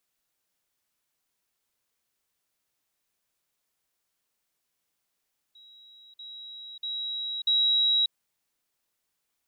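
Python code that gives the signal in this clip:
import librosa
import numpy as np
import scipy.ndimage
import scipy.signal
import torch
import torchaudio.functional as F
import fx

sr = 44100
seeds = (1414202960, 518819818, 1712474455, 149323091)

y = fx.level_ladder(sr, hz=3860.0, from_db=-50.0, step_db=10.0, steps=4, dwell_s=0.59, gap_s=0.05)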